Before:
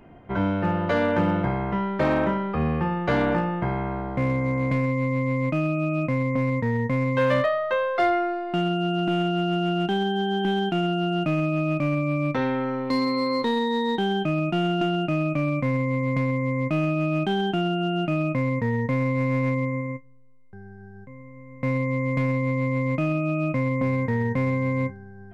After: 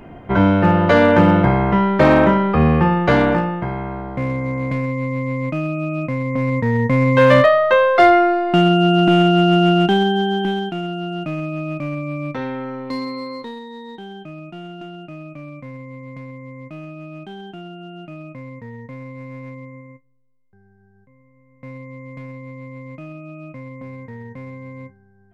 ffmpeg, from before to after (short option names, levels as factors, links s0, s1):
-af "volume=8.91,afade=t=out:st=2.87:d=0.79:silence=0.375837,afade=t=in:st=6.23:d=1.16:silence=0.354813,afade=t=out:st=9.67:d=1.07:silence=0.251189,afade=t=out:st=12.91:d=0.71:silence=0.334965"